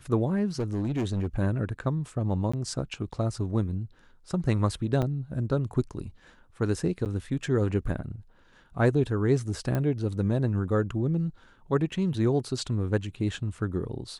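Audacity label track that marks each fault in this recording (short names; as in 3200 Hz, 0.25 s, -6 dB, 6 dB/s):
0.590000	1.270000	clipped -24 dBFS
2.520000	2.540000	gap 15 ms
5.020000	5.030000	gap 6.1 ms
7.050000	7.060000	gap 8.6 ms
9.750000	9.750000	pop -17 dBFS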